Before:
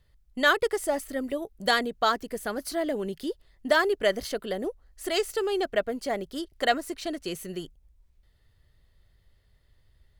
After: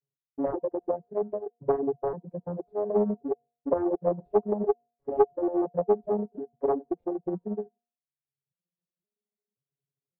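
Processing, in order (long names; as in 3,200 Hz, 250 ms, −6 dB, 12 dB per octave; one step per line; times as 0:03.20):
vocoder with an arpeggio as carrier major triad, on C#3, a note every 531 ms
noise gate with hold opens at −58 dBFS
parametric band 420 Hz +12 dB 0.44 octaves
in parallel at −10 dB: decimation without filtering 39×
on the sum: Chebyshev low-pass filter 830 Hz, order 3
hum removal 235.9 Hz, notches 4
reverb reduction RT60 0.9 s
highs frequency-modulated by the lows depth 0.31 ms
level −4 dB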